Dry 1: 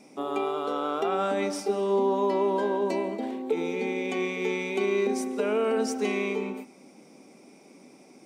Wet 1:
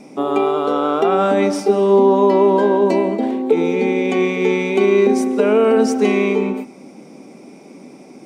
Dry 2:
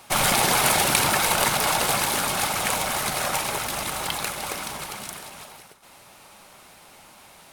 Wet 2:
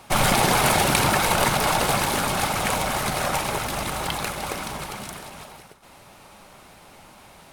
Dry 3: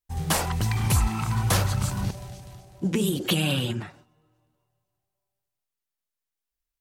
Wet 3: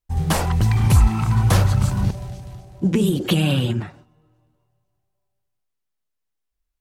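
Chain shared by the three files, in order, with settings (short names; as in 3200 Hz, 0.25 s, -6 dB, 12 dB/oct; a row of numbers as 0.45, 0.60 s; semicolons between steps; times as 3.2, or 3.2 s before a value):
tilt -1.5 dB/oct; normalise peaks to -3 dBFS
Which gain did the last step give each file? +10.5, +2.0, +3.5 dB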